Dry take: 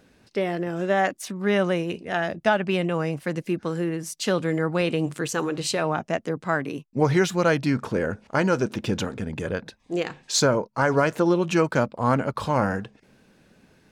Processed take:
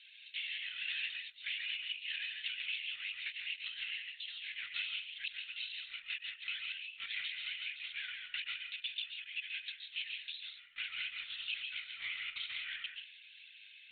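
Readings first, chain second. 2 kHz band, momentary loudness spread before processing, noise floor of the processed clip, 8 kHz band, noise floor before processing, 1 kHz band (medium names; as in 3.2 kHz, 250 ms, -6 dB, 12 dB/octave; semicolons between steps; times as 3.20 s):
-10.0 dB, 8 LU, -58 dBFS, under -40 dB, -60 dBFS, -36.0 dB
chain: single-diode clipper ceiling -21.5 dBFS; steep high-pass 2.5 kHz 36 dB/octave; compression 12:1, threshold -50 dBFS, peak gain reduction 28 dB; algorithmic reverb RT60 0.43 s, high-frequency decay 0.5×, pre-delay 100 ms, DRR 2.5 dB; LPC vocoder at 8 kHz whisper; trim +14 dB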